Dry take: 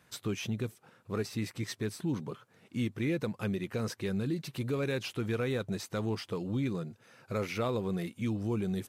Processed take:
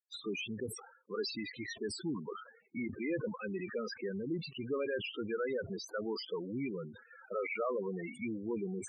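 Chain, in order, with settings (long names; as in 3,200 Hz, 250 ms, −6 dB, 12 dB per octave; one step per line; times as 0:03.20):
meter weighting curve A
noise gate −59 dBFS, range −47 dB
in parallel at −2 dB: downward compressor, threshold −49 dBFS, peak gain reduction 17.5 dB
on the sum: asymmetric clip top −29.5 dBFS
spectral peaks only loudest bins 8
level that may fall only so fast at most 89 dB per second
level +2 dB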